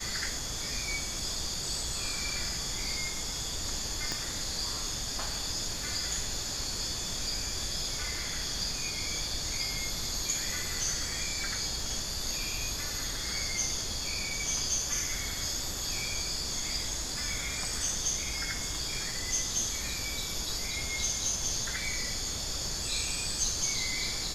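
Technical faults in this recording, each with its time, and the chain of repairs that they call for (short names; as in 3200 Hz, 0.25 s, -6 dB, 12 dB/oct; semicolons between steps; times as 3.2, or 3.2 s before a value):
crackle 31/s -41 dBFS
4.12 pop -18 dBFS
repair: de-click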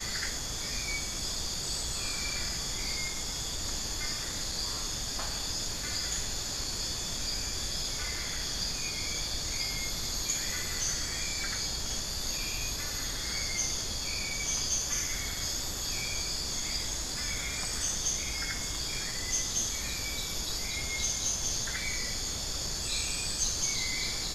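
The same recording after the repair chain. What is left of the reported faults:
4.12 pop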